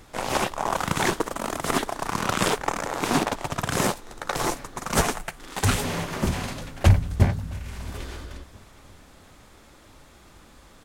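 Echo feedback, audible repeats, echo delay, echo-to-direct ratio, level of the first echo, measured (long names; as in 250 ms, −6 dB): 41%, 2, 668 ms, −23.0 dB, −24.0 dB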